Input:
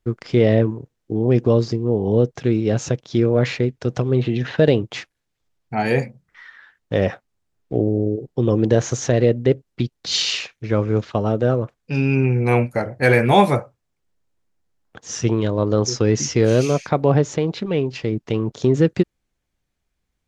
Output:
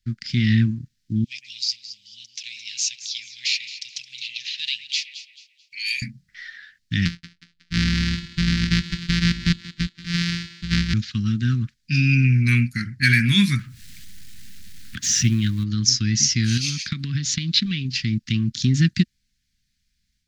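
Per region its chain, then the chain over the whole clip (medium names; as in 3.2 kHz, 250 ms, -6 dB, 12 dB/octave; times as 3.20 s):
1.24–6.02 s: elliptic high-pass 2.4 kHz, stop band 50 dB + echo whose repeats swap between lows and highs 109 ms, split 2.3 kHz, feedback 56%, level -8.5 dB
7.05–10.94 s: sorted samples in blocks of 256 samples + distance through air 170 m + thinning echo 183 ms, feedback 47%, high-pass 240 Hz, level -15 dB
13.59–15.64 s: companding laws mixed up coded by mu + peaking EQ 5.1 kHz -7 dB + upward compressor, threshold -22 dBFS
16.57–17.85 s: gate -36 dBFS, range -6 dB + peaking EQ 3.8 kHz +7 dB 1.1 oct + compression 12:1, threshold -18 dBFS
whole clip: elliptic band-stop 230–1700 Hz, stop band 80 dB; peaking EQ 4.7 kHz +11.5 dB 0.95 oct; level rider gain up to 5 dB; trim -1.5 dB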